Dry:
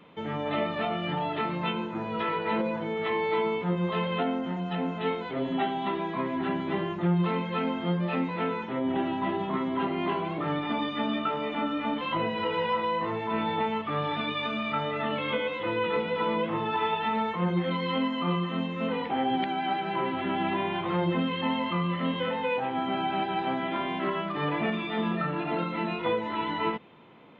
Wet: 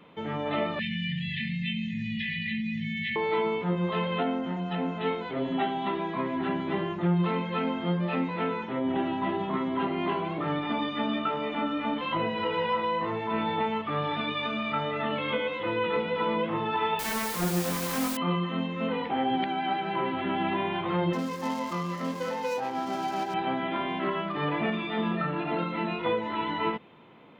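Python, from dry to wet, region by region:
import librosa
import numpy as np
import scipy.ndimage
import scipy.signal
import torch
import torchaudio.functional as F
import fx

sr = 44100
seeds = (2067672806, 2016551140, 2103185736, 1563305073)

y = fx.chain(x, sr, fx.brickwall_bandstop(low_hz=240.0, high_hz=1700.0),
    fx.env_flatten(amount_pct=70), at=(0.79, 3.16))
y = fx.chain(y, sr, fx.self_delay(depth_ms=0.52),
    fx.high_shelf(hz=3400.0, db=-11.0),
    fx.quant_dither(seeds[0], bits=6, dither='triangular'), at=(16.99, 18.17))
y = fx.chain(y, sr, fx.median_filter(points=15),
    fx.low_shelf(hz=180.0, db=-9.5), at=(21.13, 23.34))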